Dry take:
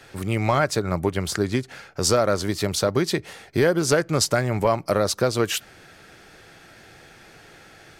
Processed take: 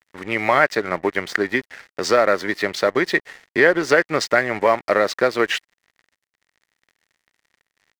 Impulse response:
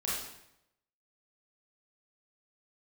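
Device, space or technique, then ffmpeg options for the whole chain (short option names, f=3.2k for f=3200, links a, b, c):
pocket radio on a weak battery: -af "highpass=310,lowpass=3.9k,aeval=exprs='sgn(val(0))*max(abs(val(0))-0.00794,0)':c=same,equalizer=f=1.9k:t=o:w=0.38:g=12,volume=4.5dB"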